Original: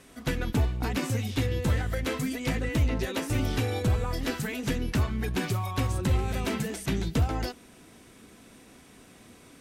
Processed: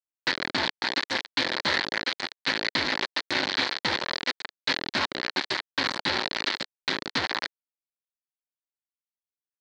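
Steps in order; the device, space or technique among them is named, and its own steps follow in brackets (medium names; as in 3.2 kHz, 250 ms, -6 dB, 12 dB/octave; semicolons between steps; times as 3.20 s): hand-held game console (bit crusher 4-bit; cabinet simulation 460–4400 Hz, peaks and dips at 460 Hz -10 dB, 700 Hz -9 dB, 1.2 kHz -6 dB, 1.8 kHz +4 dB, 2.7 kHz -5 dB, 4.3 kHz +9 dB); trim +5 dB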